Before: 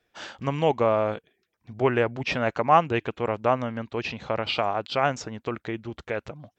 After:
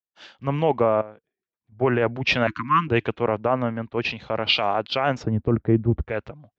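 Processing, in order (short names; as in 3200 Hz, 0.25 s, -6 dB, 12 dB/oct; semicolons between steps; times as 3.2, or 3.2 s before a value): 1.01–1.72 compressor 2.5:1, threshold -49 dBFS, peak gain reduction 17.5 dB; 2.47–2.88 Chebyshev band-stop 320–1000 Hz, order 5; 5.23–6.05 tilt shelf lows +9.5 dB, about 790 Hz; limiter -16.5 dBFS, peak gain reduction 8 dB; air absorption 180 m; three-band expander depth 100%; gain +6.5 dB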